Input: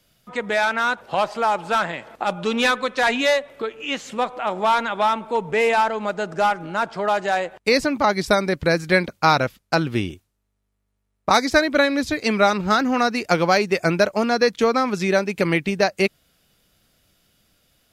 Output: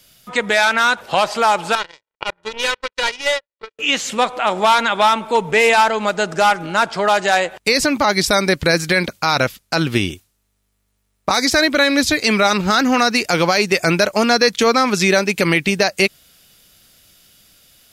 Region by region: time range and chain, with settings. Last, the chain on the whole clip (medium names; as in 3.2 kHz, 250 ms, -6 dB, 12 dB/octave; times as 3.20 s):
1.75–3.79 s: low-pass 1.7 kHz 6 dB/octave + power-law waveshaper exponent 3 + comb 2.1 ms, depth 61%
whole clip: treble shelf 2.1 kHz +10 dB; peak limiter -9.5 dBFS; trim +5 dB